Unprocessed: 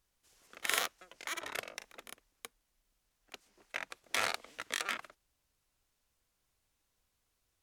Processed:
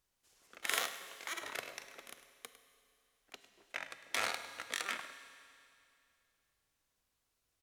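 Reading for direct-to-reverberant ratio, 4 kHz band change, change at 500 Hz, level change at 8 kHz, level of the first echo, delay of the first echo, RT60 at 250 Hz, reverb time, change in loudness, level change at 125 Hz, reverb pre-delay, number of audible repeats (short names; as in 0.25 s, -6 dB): 8.5 dB, -2.0 dB, -2.0 dB, -2.0 dB, -14.0 dB, 0.103 s, 2.5 s, 2.5 s, -2.0 dB, -3.5 dB, 7 ms, 1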